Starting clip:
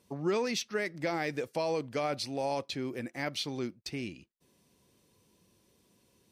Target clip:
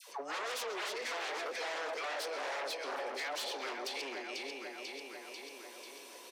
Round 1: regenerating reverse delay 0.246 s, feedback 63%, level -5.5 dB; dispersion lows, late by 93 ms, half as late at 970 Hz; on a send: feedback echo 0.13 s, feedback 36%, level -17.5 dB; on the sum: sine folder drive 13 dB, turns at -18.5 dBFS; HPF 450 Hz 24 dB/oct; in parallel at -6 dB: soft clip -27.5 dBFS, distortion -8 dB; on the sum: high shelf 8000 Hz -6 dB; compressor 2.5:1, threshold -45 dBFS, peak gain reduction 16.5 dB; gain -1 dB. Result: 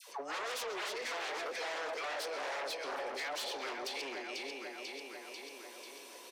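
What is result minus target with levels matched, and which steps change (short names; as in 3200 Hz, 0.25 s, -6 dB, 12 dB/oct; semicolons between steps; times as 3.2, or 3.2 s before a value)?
soft clip: distortion +9 dB
change: soft clip -18.5 dBFS, distortion -17 dB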